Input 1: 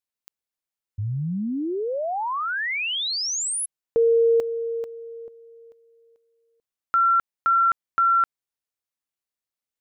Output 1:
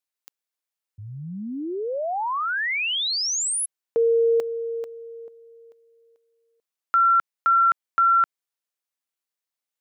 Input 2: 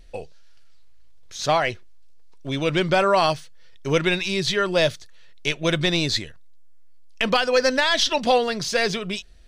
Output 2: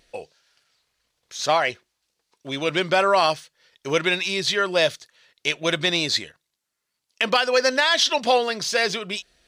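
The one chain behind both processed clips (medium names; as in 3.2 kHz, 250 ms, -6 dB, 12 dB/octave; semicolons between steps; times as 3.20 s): high-pass 430 Hz 6 dB/octave; trim +1.5 dB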